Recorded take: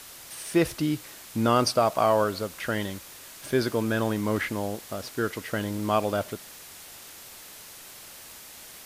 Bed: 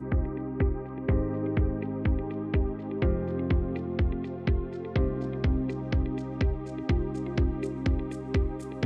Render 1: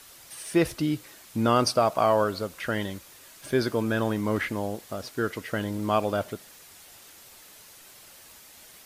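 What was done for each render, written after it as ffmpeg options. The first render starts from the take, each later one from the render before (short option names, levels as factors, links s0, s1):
-af "afftdn=nr=6:nf=-46"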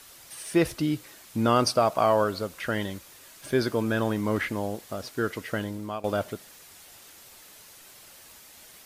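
-filter_complex "[0:a]asplit=2[s0][s1];[s0]atrim=end=6.04,asetpts=PTS-STARTPTS,afade=t=out:st=5.53:d=0.51:silence=0.158489[s2];[s1]atrim=start=6.04,asetpts=PTS-STARTPTS,afade=t=in:d=0.004:c=hsin:silence=0.158489[s3];[s2][s3]concat=n=2:v=0:a=1"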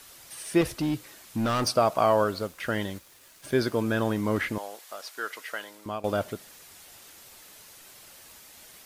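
-filter_complex "[0:a]asettb=1/sr,asplit=3[s0][s1][s2];[s0]atrim=end=0.614[s3];[s1]atrim=start=0.61:end=1.68,asetpts=PTS-STARTPTS,afade=t=in:d=0.004:c=qsin,afade=t=out:st=1.066:d=0.004:c=qsin,volume=13.3,asoftclip=hard,volume=0.075[s4];[s2]atrim=start=1.676[s5];[s3][s4]acrossfade=d=0.004:c1=hsin:c2=qsin[s6];[s6][s5]acrossfade=d=0.004:c1=qsin:c2=hsin,asettb=1/sr,asplit=3[s7][s8][s9];[s7]atrim=end=2.314[s10];[s8]atrim=start=2.31:end=4.06,asetpts=PTS-STARTPTS,afade=t=in:d=0.004:c=qsin,afade=t=out:st=1.746:d=0.004:c=qsin,aeval=exprs='sgn(val(0))*max(abs(val(0))-0.00188,0)':c=same[s11];[s9]atrim=start=4.056[s12];[s10][s11]acrossfade=d=0.004:c1=hsin:c2=qsin[s13];[s13][s12]acrossfade=d=0.004:c1=qsin:c2=hsin,asettb=1/sr,asplit=3[s14][s15][s16];[s14]atrim=end=4.584[s17];[s15]atrim=start=4.58:end=5.86,asetpts=PTS-STARTPTS,afade=t=in:d=0.004:c=qsin,afade=t=out:st=1.276:d=0.004:c=qsin,highpass=800[s18];[s16]atrim=start=5.856[s19];[s17][s18]acrossfade=d=0.004:c1=hsin:c2=qsin[s20];[s20][s19]acrossfade=d=0.004:c1=qsin:c2=hsin"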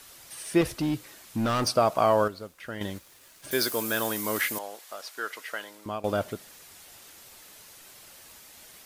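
-filter_complex "[0:a]asettb=1/sr,asplit=3[s0][s1][s2];[s0]atrim=end=3.514[s3];[s1]atrim=start=3.51:end=4.59,asetpts=PTS-STARTPTS,afade=t=in:d=0.004:c=qsin,afade=t=out:st=1.076:d=0.004:c=qsin,aemphasis=mode=production:type=riaa[s4];[s2]atrim=start=4.586[s5];[s3][s4]acrossfade=d=0.004:c1=hsin:c2=qsin[s6];[s6][s5]acrossfade=d=0.004:c1=qsin:c2=hsin,asplit=3[s7][s8][s9];[s7]atrim=end=2.282[s10];[s8]atrim=start=2.278:end=2.812,asetpts=PTS-STARTPTS,volume=0.376[s11];[s9]atrim=start=2.808[s12];[s10][s11]acrossfade=d=0.004:c1=hsin:c2=hsin[s13];[s13][s12]acrossfade=d=0.004:c1=hsin:c2=hsin"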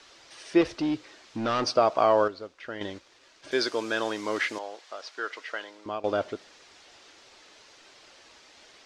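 -af "lowpass=f=5800:w=0.5412,lowpass=f=5800:w=1.3066,lowshelf=f=240:t=q:w=1.5:g=-7"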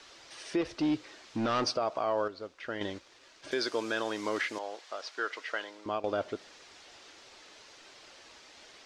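-af "alimiter=limit=0.0944:level=0:latency=1:release=310"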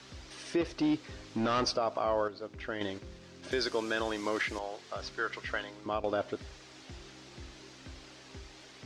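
-filter_complex "[1:a]volume=0.0708[s0];[0:a][s0]amix=inputs=2:normalize=0"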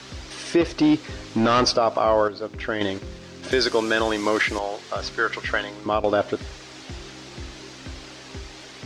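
-af "volume=3.55"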